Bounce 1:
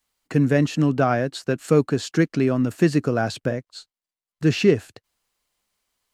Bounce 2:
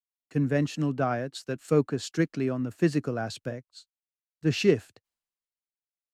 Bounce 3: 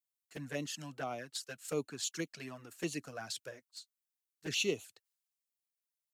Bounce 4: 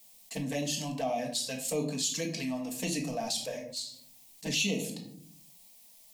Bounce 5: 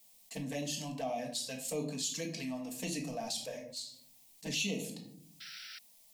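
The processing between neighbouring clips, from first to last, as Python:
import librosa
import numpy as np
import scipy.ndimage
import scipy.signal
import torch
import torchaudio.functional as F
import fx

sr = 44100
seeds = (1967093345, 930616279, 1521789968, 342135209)

y1 = fx.band_widen(x, sr, depth_pct=70)
y1 = y1 * 10.0 ** (-7.5 / 20.0)
y2 = fx.tilt_eq(y1, sr, slope=4.0)
y2 = fx.env_flanger(y2, sr, rest_ms=11.6, full_db=-25.5)
y2 = y2 * 10.0 ** (-6.5 / 20.0)
y3 = fx.fixed_phaser(y2, sr, hz=380.0, stages=6)
y3 = fx.room_shoebox(y3, sr, seeds[0], volume_m3=410.0, walls='furnished', distance_m=1.6)
y3 = fx.env_flatten(y3, sr, amount_pct=50)
y3 = y3 * 10.0 ** (4.0 / 20.0)
y4 = fx.spec_paint(y3, sr, seeds[1], shape='noise', start_s=5.4, length_s=0.39, low_hz=1300.0, high_hz=5900.0, level_db=-43.0)
y4 = y4 * 10.0 ** (-5.0 / 20.0)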